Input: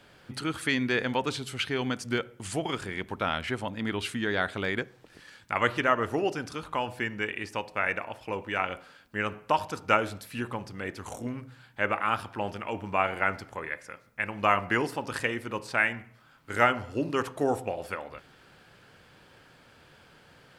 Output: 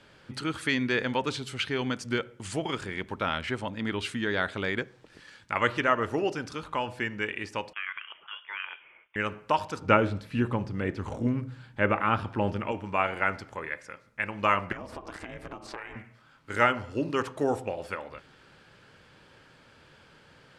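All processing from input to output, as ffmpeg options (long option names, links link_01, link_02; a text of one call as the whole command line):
ffmpeg -i in.wav -filter_complex "[0:a]asettb=1/sr,asplit=3[link_01][link_02][link_03];[link_01]atrim=end=7.734[link_04];[link_02]atrim=start=7.73:end=9.16,asetpts=PTS-STARTPTS,afade=type=in:duration=0.004:curve=qsin,afade=type=out:start_time=1.426:duration=0.004:curve=qsin,highpass=1100,acompressor=threshold=-34dB:ratio=2:attack=3.2:release=140:knee=1:detection=peak,lowpass=frequency=3200:width_type=q:width=0.5098,lowpass=frequency=3200:width_type=q:width=0.6013,lowpass=frequency=3200:width_type=q:width=0.9,lowpass=frequency=3200:width_type=q:width=2.563,afreqshift=-3800[link_05];[link_03]atrim=start=9.156[link_06];[link_04][link_05]acrossfade=duration=0.004:curve1=hsin:curve2=qsin[link_07];[link_07][link_06]acrossfade=duration=0.004:curve1=qsin:curve2=hsin,asettb=1/sr,asplit=3[link_08][link_09][link_10];[link_08]atrim=end=9.814[link_11];[link_09]atrim=start=9.81:end=12.72,asetpts=PTS-STARTPTS,afade=type=in:duration=0.004:curve=qsin,afade=type=out:start_time=2.906:duration=0.004:curve=qsin,acrossover=split=4100[link_12][link_13];[link_13]acompressor=threshold=-57dB:ratio=4:attack=1:release=60[link_14];[link_12][link_14]amix=inputs=2:normalize=0,lowshelf=frequency=460:gain=10[link_15];[link_10]atrim=start=12.716[link_16];[link_11][link_15]acrossfade=duration=0.004:curve1=hsin:curve2=qsin[link_17];[link_17][link_16]acrossfade=duration=0.004:curve1=qsin:curve2=hsin,asettb=1/sr,asplit=3[link_18][link_19][link_20];[link_18]atrim=end=14.724[link_21];[link_19]atrim=start=14.72:end=15.96,asetpts=PTS-STARTPTS,afade=type=in:duration=0.004:curve=qsin,afade=type=out:start_time=1.236:duration=0.004:curve=qsin,equalizer=frequency=700:width=0.84:gain=9.5,acompressor=threshold=-33dB:ratio=8:attack=3.2:release=140:knee=1:detection=peak,aeval=exprs='val(0)*sin(2*PI*200*n/s)':channel_layout=same[link_22];[link_20]atrim=start=15.956[link_23];[link_21][link_22]acrossfade=duration=0.004:curve1=hsin:curve2=qsin[link_24];[link_24][link_23]acrossfade=duration=0.004:curve1=qsin:curve2=hsin,lowpass=8600,bandreject=frequency=720:width=12" out.wav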